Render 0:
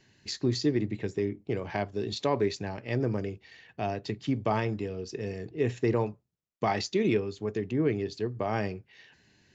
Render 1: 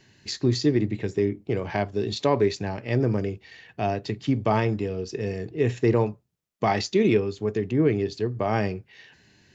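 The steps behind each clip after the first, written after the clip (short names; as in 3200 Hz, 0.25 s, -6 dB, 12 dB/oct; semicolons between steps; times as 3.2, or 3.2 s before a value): harmonic-percussive split harmonic +3 dB; gain +3.5 dB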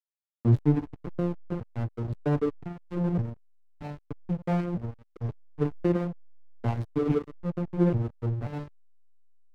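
arpeggiated vocoder major triad, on A#2, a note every 0.528 s; backlash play -21.5 dBFS; gain -1.5 dB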